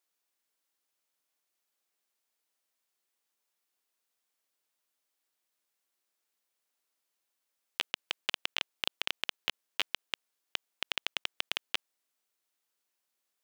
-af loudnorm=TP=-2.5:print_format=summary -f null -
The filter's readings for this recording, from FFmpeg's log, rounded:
Input Integrated:    -36.2 LUFS
Input True Peak:     -10.7 dBTP
Input LRA:             3.5 LU
Input Threshold:     -46.2 LUFS